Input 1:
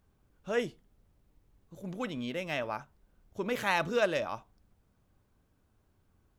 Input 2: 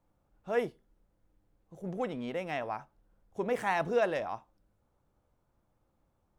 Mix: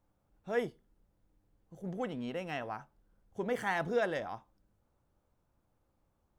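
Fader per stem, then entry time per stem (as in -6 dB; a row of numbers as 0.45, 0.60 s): -14.0, -2.5 dB; 0.00, 0.00 s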